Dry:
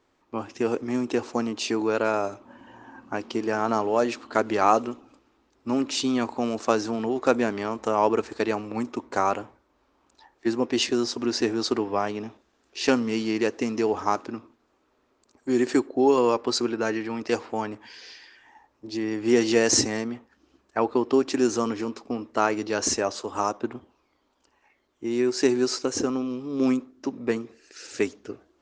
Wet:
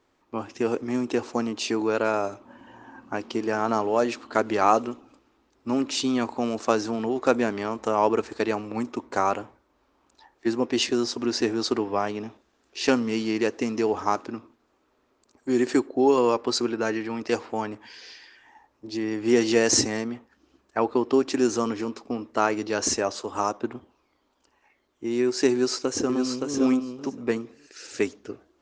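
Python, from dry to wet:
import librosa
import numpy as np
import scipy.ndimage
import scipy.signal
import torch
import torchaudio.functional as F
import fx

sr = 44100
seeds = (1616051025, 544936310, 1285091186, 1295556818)

y = fx.echo_throw(x, sr, start_s=25.52, length_s=1.0, ms=570, feedback_pct=10, wet_db=-4.5)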